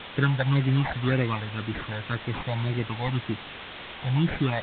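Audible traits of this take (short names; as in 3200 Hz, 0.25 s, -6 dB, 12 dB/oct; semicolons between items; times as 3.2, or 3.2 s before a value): aliases and images of a low sample rate 3100 Hz, jitter 0%; phasing stages 8, 1.9 Hz, lowest notch 340–1100 Hz; a quantiser's noise floor 6-bit, dither triangular; A-law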